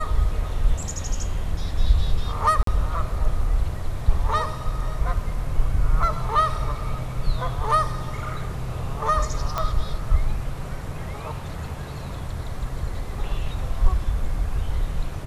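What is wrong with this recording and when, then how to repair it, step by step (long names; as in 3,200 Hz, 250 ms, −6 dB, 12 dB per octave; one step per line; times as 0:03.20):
0:02.63–0:02.67: drop-out 43 ms
0:09.58: click −11 dBFS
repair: click removal
repair the gap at 0:02.63, 43 ms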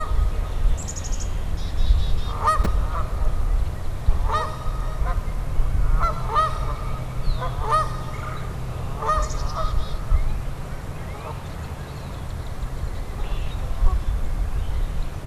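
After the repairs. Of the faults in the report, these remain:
none of them is left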